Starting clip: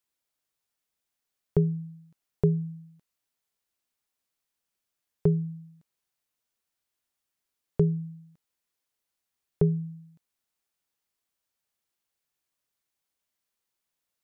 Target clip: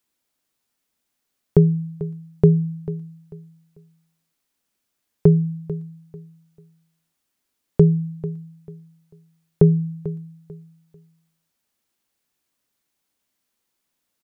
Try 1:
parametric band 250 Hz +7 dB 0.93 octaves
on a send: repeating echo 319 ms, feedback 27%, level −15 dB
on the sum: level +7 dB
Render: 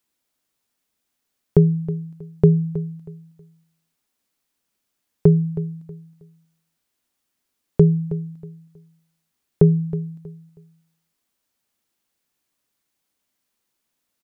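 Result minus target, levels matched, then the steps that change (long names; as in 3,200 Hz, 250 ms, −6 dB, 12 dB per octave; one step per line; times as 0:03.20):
echo 124 ms early
change: repeating echo 443 ms, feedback 27%, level −15 dB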